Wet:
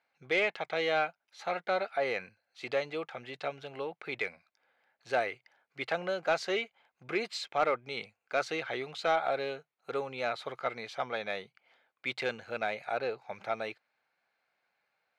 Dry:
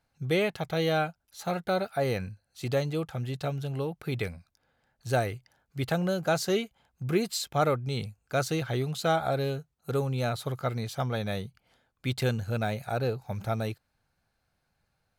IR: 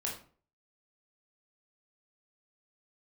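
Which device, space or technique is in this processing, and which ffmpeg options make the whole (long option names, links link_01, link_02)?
intercom: -af "highpass=490,lowpass=3700,equalizer=frequency=2200:width_type=o:width=0.43:gain=7,asoftclip=type=tanh:threshold=-17dB"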